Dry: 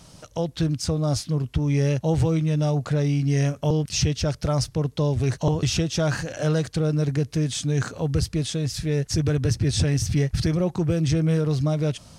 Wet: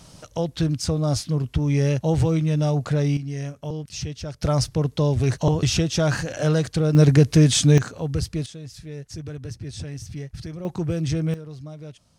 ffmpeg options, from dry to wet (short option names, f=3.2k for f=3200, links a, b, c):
-af "asetnsamples=n=441:p=0,asendcmd='3.17 volume volume -8.5dB;4.41 volume volume 2dB;6.95 volume volume 9dB;7.78 volume volume -2dB;8.46 volume volume -12dB;10.65 volume volume -2.5dB;11.34 volume volume -15dB',volume=1dB"